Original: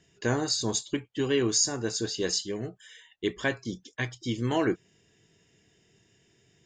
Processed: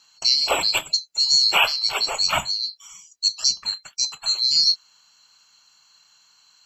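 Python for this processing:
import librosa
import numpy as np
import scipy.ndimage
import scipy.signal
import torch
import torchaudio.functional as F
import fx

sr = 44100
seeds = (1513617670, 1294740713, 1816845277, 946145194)

y = fx.band_swap(x, sr, width_hz=4000)
y = F.gain(torch.from_numpy(y), 7.5).numpy()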